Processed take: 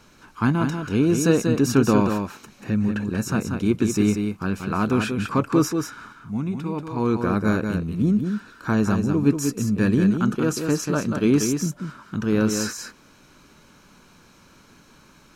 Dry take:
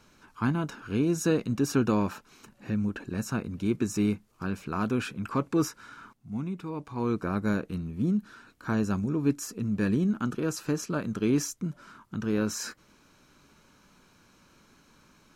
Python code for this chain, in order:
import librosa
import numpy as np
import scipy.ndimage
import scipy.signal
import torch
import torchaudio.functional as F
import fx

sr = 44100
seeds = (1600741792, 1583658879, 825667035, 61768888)

y = x + 10.0 ** (-6.0 / 20.0) * np.pad(x, (int(187 * sr / 1000.0), 0))[:len(x)]
y = y * 10.0 ** (6.5 / 20.0)